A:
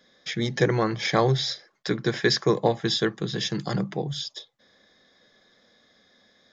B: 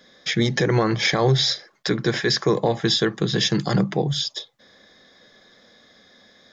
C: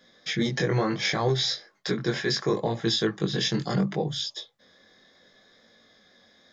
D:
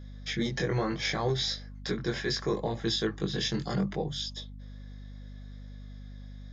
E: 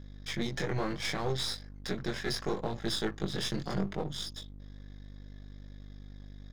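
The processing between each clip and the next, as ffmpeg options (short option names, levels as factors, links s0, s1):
-af "alimiter=limit=0.141:level=0:latency=1:release=88,volume=2.37"
-af "flanger=delay=17.5:depth=5.3:speed=0.7,volume=0.75"
-af "aeval=exprs='val(0)+0.0126*(sin(2*PI*50*n/s)+sin(2*PI*2*50*n/s)/2+sin(2*PI*3*50*n/s)/3+sin(2*PI*4*50*n/s)/4+sin(2*PI*5*50*n/s)/5)':c=same,volume=0.596"
-af "aeval=exprs='if(lt(val(0),0),0.251*val(0),val(0))':c=same"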